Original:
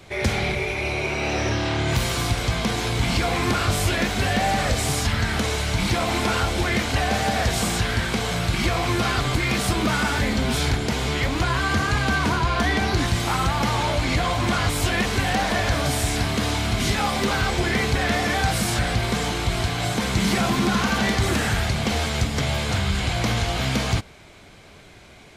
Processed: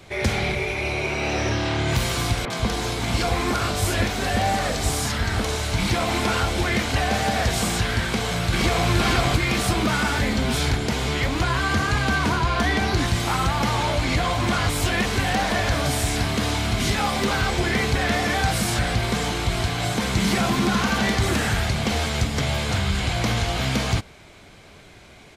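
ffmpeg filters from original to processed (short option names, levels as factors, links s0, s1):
-filter_complex "[0:a]asettb=1/sr,asplit=3[s0][s1][s2];[s0]atrim=end=2.454[s3];[s1]atrim=start=2.45:end=5.73,asetpts=PTS-STARTPTS,afade=t=in:d=0.004:c=qsin,afade=t=out:st=3.276:d=0.004:c=qsin,acrossover=split=150|2400[s4][s5][s6];[s6]adelay=50[s7];[s4]adelay=140[s8];[s8][s5][s7]amix=inputs=3:normalize=0,atrim=end_sample=144648[s9];[s2]atrim=start=5.726[s10];[s3][s9]acrossfade=d=0.004:c1=hsin:c2=qsin[s11];[s11][s10]acrossfade=d=0.004:c1=qsin:c2=hsin,asplit=2[s12][s13];[s13]afade=t=in:st=8.05:d=0.01,afade=t=out:st=8.89:d=0.01,aecho=0:1:470|940|1410|1880|2350:0.841395|0.294488|0.103071|0.0360748|0.0126262[s14];[s12][s14]amix=inputs=2:normalize=0,asettb=1/sr,asplit=3[s15][s16][s17];[s15]atrim=end=14.194[s18];[s16]atrim=start=14.19:end=17.36,asetpts=PTS-STARTPTS,afade=t=in:d=0.004:c=qsin,afade=t=out:st=3.166:d=0.004:c=qsin,asoftclip=type=hard:threshold=0.2[s19];[s17]atrim=start=17.356[s20];[s18][s19]acrossfade=d=0.004:c1=hsin:c2=qsin[s21];[s21][s20]acrossfade=d=0.004:c1=qsin:c2=hsin"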